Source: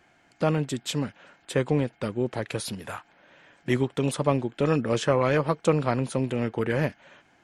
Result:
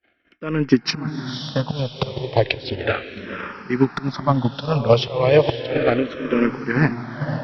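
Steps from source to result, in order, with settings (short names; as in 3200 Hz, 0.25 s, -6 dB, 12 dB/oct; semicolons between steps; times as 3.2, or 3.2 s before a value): Chebyshev low-pass 5600 Hz, order 8; gate -60 dBFS, range -25 dB; in parallel at -2.5 dB: compressor, threshold -35 dBFS, peak gain reduction 17.5 dB; on the sum: auto swell 0.289 s; AGC gain up to 11.5 dB; on a send: diffused feedback echo 0.515 s, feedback 46%, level -6 dB; on the sum: transient shaper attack +8 dB, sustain -1 dB; endless phaser -0.34 Hz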